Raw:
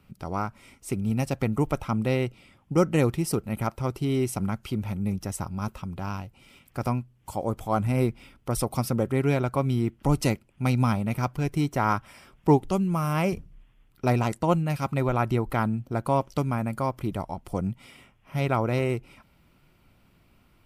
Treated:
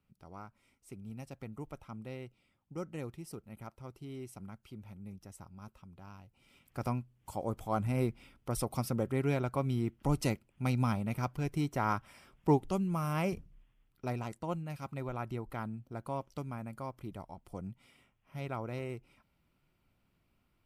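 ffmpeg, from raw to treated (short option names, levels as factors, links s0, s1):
-af "volume=0.422,afade=t=in:st=6.19:d=0.6:silence=0.266073,afade=t=out:st=13.28:d=0.88:silence=0.473151"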